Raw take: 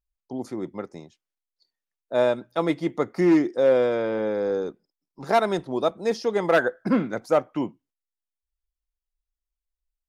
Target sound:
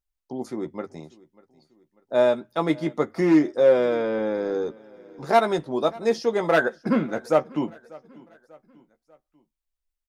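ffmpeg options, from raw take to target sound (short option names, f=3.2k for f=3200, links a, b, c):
-filter_complex "[0:a]bandreject=f=50:t=h:w=6,bandreject=f=100:t=h:w=6,asplit=2[a][b];[b]adelay=13,volume=-8dB[c];[a][c]amix=inputs=2:normalize=0,asplit=2[d][e];[e]aecho=0:1:592|1184|1776:0.0708|0.0326|0.015[f];[d][f]amix=inputs=2:normalize=0"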